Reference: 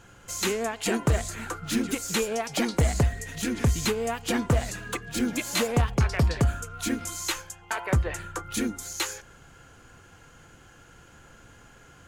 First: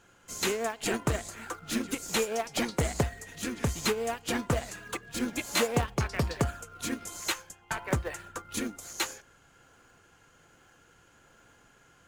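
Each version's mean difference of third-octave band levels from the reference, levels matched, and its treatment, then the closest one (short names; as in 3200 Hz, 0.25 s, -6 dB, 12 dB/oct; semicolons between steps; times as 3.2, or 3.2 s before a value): 3.0 dB: low shelf 200 Hz -11 dB; in parallel at -10 dB: decimation with a swept rate 33×, swing 160% 1.2 Hz; on the sum: upward expander 1.5:1, over -35 dBFS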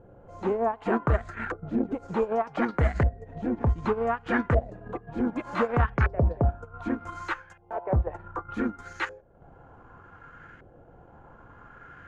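10.5 dB: high shelf 6500 Hz +6.5 dB; transient shaper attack -6 dB, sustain -10 dB; LFO low-pass saw up 0.66 Hz 540–1800 Hz; gain +1.5 dB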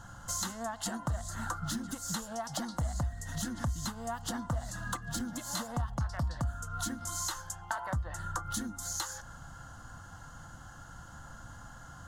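6.5 dB: high shelf 7700 Hz -7 dB; compressor 6:1, threshold -36 dBFS, peak gain reduction 16 dB; fixed phaser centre 1000 Hz, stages 4; gain +6 dB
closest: first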